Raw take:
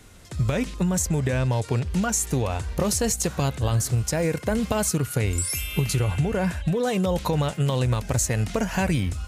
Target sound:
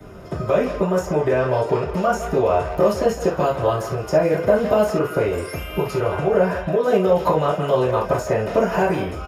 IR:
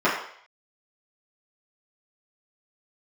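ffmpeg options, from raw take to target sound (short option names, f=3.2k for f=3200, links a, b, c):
-filter_complex "[0:a]equalizer=f=250:t=o:w=1:g=-9,equalizer=f=500:t=o:w=1:g=3,equalizer=f=1k:t=o:w=1:g=-5,equalizer=f=2k:t=o:w=1:g=-12,equalizer=f=4k:t=o:w=1:g=-7,equalizer=f=8k:t=o:w=1:g=-10,acrossover=split=400|1700|4700[a][b][c][d];[a]acompressor=threshold=-37dB:ratio=4[e];[b]acompressor=threshold=-34dB:ratio=4[f];[c]acompressor=threshold=-49dB:ratio=4[g];[d]acompressor=threshold=-44dB:ratio=4[h];[e][f][g][h]amix=inputs=4:normalize=0,equalizer=f=72:w=1.5:g=3[i];[1:a]atrim=start_sample=2205,atrim=end_sample=3528[j];[i][j]afir=irnorm=-1:irlink=0,acrossover=split=320[k][l];[k]acompressor=threshold=-25dB:ratio=6[m];[m][l]amix=inputs=2:normalize=0,asplit=2[n][o];[o]adelay=160,highpass=300,lowpass=3.4k,asoftclip=type=hard:threshold=-14dB,volume=-10dB[p];[n][p]amix=inputs=2:normalize=0"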